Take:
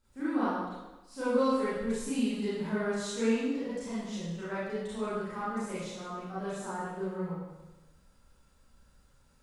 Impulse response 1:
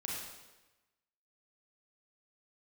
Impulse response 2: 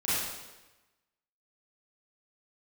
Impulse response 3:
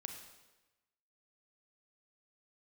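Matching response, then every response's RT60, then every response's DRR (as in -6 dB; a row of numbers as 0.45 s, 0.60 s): 2; 1.1 s, 1.1 s, 1.1 s; -4.0 dB, -12.5 dB, 4.0 dB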